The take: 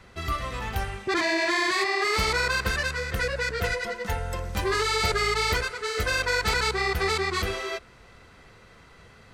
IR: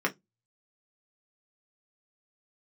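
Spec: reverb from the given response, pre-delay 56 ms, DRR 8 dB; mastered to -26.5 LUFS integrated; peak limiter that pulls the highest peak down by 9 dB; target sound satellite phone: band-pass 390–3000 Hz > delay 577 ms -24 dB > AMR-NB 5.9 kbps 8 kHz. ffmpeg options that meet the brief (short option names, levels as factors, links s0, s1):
-filter_complex "[0:a]alimiter=limit=0.0841:level=0:latency=1,asplit=2[s0][s1];[1:a]atrim=start_sample=2205,adelay=56[s2];[s1][s2]afir=irnorm=-1:irlink=0,volume=0.126[s3];[s0][s3]amix=inputs=2:normalize=0,highpass=390,lowpass=3000,aecho=1:1:577:0.0631,volume=2.66" -ar 8000 -c:a libopencore_amrnb -b:a 5900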